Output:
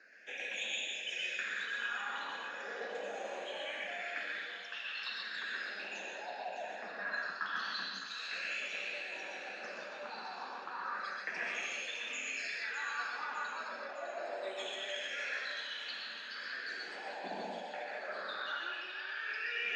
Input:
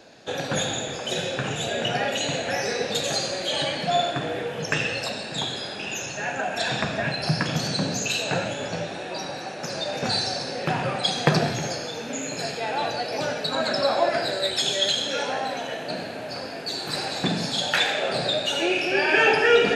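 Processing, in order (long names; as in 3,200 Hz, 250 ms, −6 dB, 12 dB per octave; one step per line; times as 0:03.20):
auto-filter band-pass sine 0.27 Hz 810–2,800 Hz
dynamic equaliser 1,000 Hz, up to +6 dB, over −43 dBFS, Q 0.88
reversed playback
downward compressor 10 to 1, threshold −35 dBFS, peak gain reduction 19.5 dB
reversed playback
elliptic high-pass filter 190 Hz, stop band 40 dB
all-pass phaser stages 6, 0.36 Hz, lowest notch 600–1,300 Hz
feedback echo with a high-pass in the loop 607 ms, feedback 59%, high-pass 760 Hz, level −9.5 dB
on a send at −1 dB: convolution reverb RT60 0.30 s, pre-delay 117 ms
on the sum: level +1 dB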